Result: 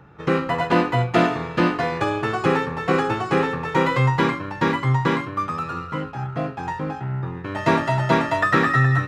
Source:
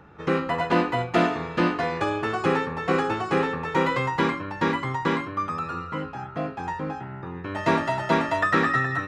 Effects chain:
parametric band 130 Hz +11.5 dB 0.23 octaves
in parallel at −7 dB: dead-zone distortion −38.5 dBFS

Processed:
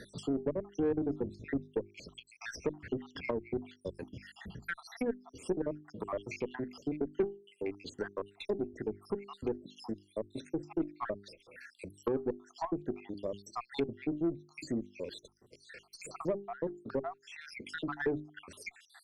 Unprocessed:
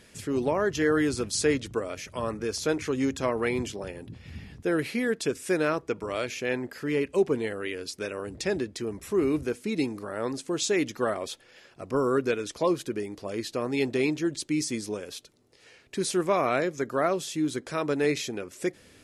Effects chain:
time-frequency cells dropped at random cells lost 75%
mains-hum notches 50/100/150/200/250/300/350/400 Hz
treble cut that deepens with the level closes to 490 Hz, closed at −29 dBFS
harmonic generator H 6 −25 dB, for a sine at −16 dBFS
in parallel at −7.5 dB: soft clipping −26.5 dBFS, distortion −13 dB
on the sum: multiband upward and downward compressor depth 40%
level −3.5 dB

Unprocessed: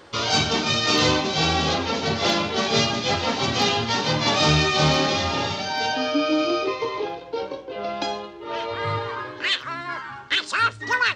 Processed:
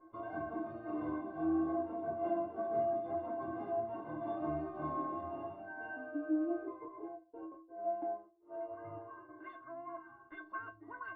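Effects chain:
0:06.88–0:09.29: downward expander −26 dBFS
low-pass filter 1,100 Hz 24 dB per octave
stiff-string resonator 320 Hz, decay 0.32 s, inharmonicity 0.03
level +3 dB

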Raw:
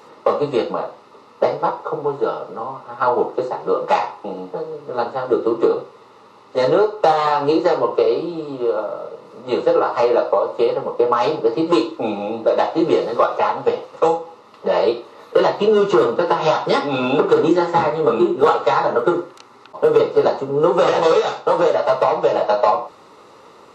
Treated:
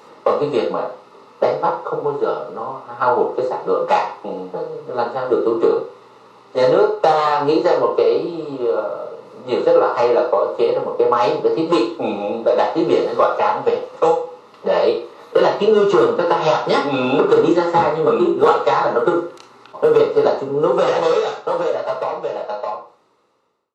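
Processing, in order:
fade-out on the ending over 3.76 s
mains-hum notches 50/100 Hz
on a send: convolution reverb RT60 0.35 s, pre-delay 23 ms, DRR 6.5 dB

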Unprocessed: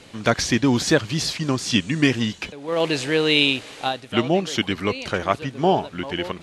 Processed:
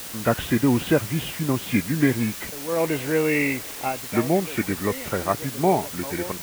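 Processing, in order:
hearing-aid frequency compression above 1,300 Hz 1.5 to 1
high-frequency loss of the air 480 metres
bit-depth reduction 6 bits, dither triangular

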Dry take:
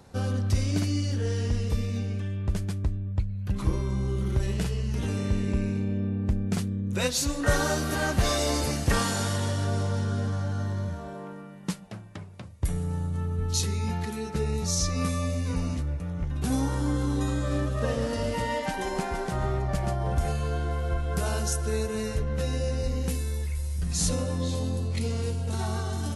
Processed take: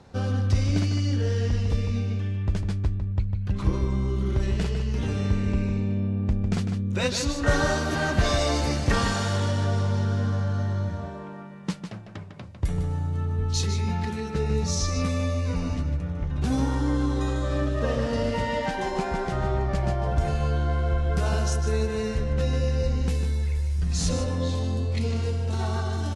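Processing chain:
low-pass filter 5,800 Hz 12 dB per octave
slap from a distant wall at 26 metres, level −7 dB
level +1.5 dB

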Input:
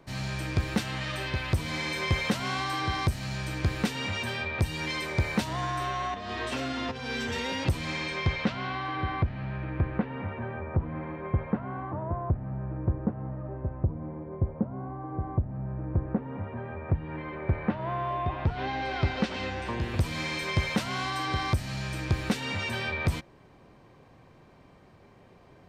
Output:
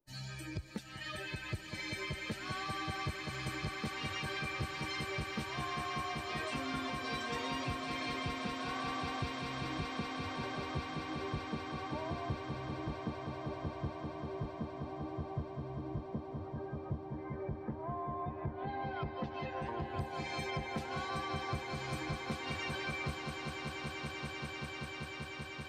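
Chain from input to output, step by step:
spectral dynamics exaggerated over time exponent 2
downward compressor 5 to 1, threshold −42 dBFS, peak gain reduction 17 dB
echo that builds up and dies away 194 ms, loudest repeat 8, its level −9 dB
level +2 dB

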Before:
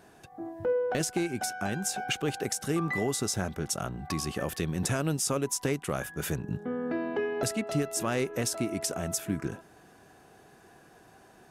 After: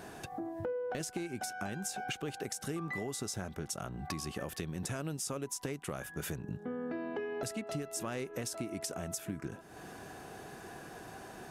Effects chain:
downward compressor 4 to 1, threshold −47 dBFS, peak gain reduction 19 dB
level +8 dB

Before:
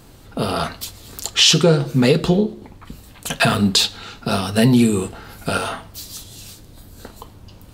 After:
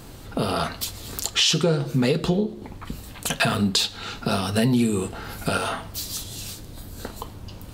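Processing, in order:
downward compressor 2 to 1, threshold −29 dBFS, peak gain reduction 11 dB
level +3.5 dB

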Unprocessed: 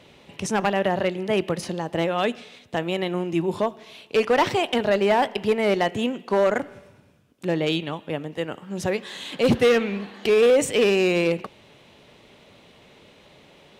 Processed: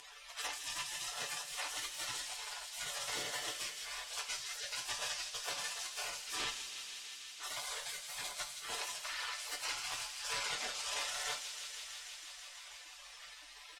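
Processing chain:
frequency axis turned over on the octave scale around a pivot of 920 Hz
high-shelf EQ 4,200 Hz +11.5 dB
downward compressor 16 to 1, threshold −27 dBFS, peak gain reduction 14 dB
soft clipping −33.5 dBFS, distortion −9 dB
transient designer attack −1 dB, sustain −7 dB
gate on every frequency bin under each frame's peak −30 dB weak
low-pass filter 7,900 Hz 12 dB per octave
bass and treble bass −7 dB, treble −5 dB
comb filter 6.8 ms, depth 50%
on a send: delay with a high-pass on its return 162 ms, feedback 80%, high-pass 2,800 Hz, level −8 dB
on the sum: coupled-rooms reverb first 0.21 s, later 2.5 s, from −21 dB, DRR 2 dB
multiband upward and downward compressor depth 40%
level +16 dB

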